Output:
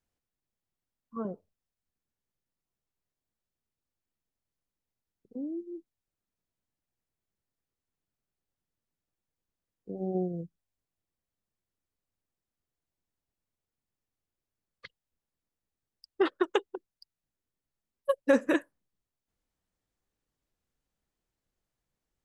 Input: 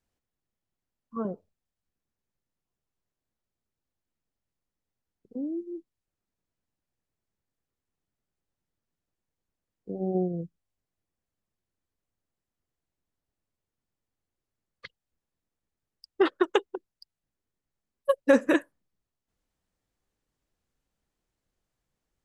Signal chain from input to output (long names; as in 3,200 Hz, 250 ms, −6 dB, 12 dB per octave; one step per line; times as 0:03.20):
0:09.98–0:10.42: high-shelf EQ 5,000 Hz +5.5 dB
level −3.5 dB